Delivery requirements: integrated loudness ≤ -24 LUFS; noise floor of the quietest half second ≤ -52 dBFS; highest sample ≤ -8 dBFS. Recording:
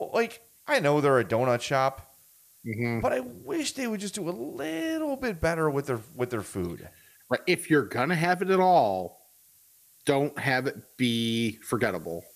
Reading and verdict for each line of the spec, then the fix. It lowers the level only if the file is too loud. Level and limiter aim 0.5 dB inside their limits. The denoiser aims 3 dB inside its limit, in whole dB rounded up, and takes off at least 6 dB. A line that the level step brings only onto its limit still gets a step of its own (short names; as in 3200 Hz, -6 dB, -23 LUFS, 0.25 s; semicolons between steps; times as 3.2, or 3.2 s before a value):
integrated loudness -27.5 LUFS: OK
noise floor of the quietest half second -59 dBFS: OK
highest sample -9.0 dBFS: OK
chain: none